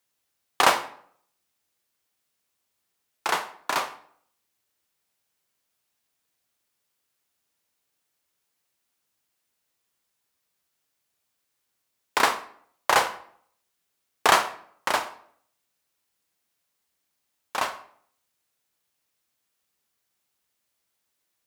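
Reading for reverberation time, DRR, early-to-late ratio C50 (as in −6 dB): 0.60 s, 10.0 dB, 13.5 dB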